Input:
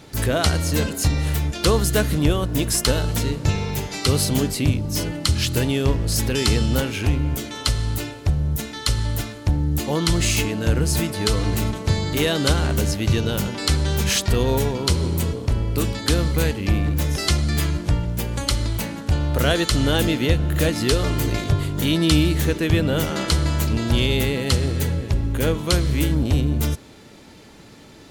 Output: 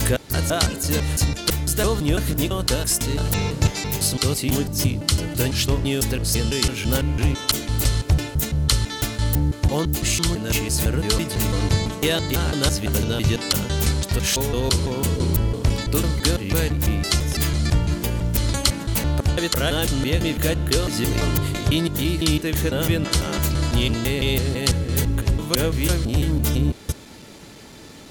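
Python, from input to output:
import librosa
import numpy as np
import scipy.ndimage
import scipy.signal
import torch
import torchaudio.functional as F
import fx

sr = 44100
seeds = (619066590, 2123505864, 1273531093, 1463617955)

y = fx.block_reorder(x, sr, ms=167.0, group=2)
y = fx.high_shelf(y, sr, hz=4900.0, db=5.5)
y = fx.rider(y, sr, range_db=4, speed_s=0.5)
y = F.gain(torch.from_numpy(y), -1.0).numpy()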